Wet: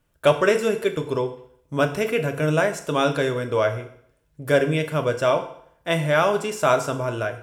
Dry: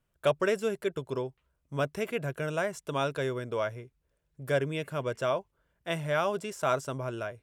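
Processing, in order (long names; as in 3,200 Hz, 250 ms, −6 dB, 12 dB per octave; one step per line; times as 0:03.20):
feedback delay network reverb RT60 0.64 s, low-frequency decay 0.9×, high-frequency decay 0.95×, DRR 5.5 dB
level +8.5 dB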